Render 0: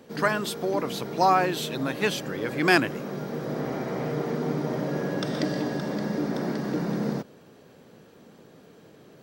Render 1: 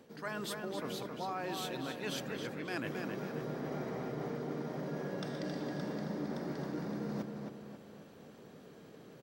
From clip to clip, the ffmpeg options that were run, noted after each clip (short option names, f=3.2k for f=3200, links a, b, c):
-filter_complex "[0:a]areverse,acompressor=threshold=-33dB:ratio=6,areverse,asplit=2[a][b];[b]adelay=269,lowpass=f=4.1k:p=1,volume=-4.5dB,asplit=2[c][d];[d]adelay=269,lowpass=f=4.1k:p=1,volume=0.48,asplit=2[e][f];[f]adelay=269,lowpass=f=4.1k:p=1,volume=0.48,asplit=2[g][h];[h]adelay=269,lowpass=f=4.1k:p=1,volume=0.48,asplit=2[i][j];[j]adelay=269,lowpass=f=4.1k:p=1,volume=0.48,asplit=2[k][l];[l]adelay=269,lowpass=f=4.1k:p=1,volume=0.48[m];[a][c][e][g][i][k][m]amix=inputs=7:normalize=0,volume=-4.5dB"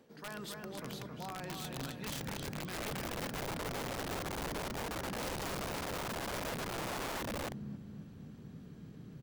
-af "asubboost=boost=10.5:cutoff=160,aeval=exprs='(mod(31.6*val(0)+1,2)-1)/31.6':c=same,volume=-4dB"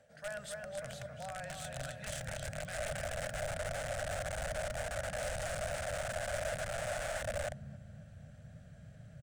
-af "firequalizer=gain_entry='entry(100,0);entry(210,-15);entry(370,-28);entry(600,7);entry(980,-18);entry(1500,1);entry(2200,-5);entry(4500,-9);entry(8500,2);entry(13000,-16)':delay=0.05:min_phase=1,volume=4dB"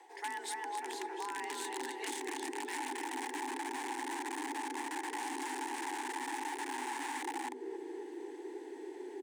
-af "afreqshift=250,acompressor=threshold=-44dB:ratio=6,volume=7.5dB"